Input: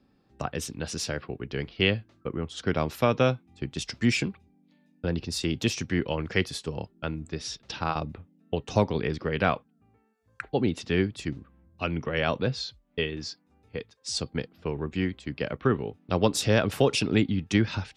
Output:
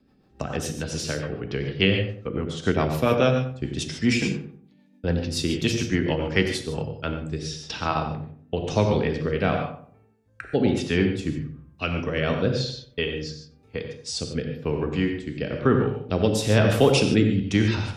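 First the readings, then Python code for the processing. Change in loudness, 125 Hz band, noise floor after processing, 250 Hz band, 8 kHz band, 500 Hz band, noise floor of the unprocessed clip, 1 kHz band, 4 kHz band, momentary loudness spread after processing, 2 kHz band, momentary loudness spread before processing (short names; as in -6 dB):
+4.0 dB, +5.0 dB, -58 dBFS, +4.5 dB, +2.0 dB, +4.5 dB, -66 dBFS, +2.5 dB, +3.0 dB, 12 LU, +3.0 dB, 11 LU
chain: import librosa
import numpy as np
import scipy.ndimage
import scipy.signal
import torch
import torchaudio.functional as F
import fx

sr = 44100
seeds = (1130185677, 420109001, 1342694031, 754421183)

y = fx.rev_gated(x, sr, seeds[0], gate_ms=170, shape='flat', drr_db=4.5)
y = fx.rotary_switch(y, sr, hz=7.0, then_hz=1.0, switch_at_s=6.32)
y = fx.echo_filtered(y, sr, ms=92, feedback_pct=36, hz=1200.0, wet_db=-7.5)
y = y * 10.0 ** (4.0 / 20.0)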